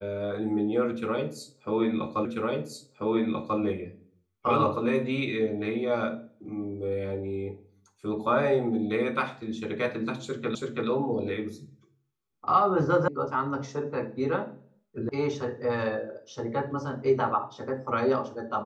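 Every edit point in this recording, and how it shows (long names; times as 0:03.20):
0:02.25: the same again, the last 1.34 s
0:10.55: the same again, the last 0.33 s
0:13.08: cut off before it has died away
0:15.09: cut off before it has died away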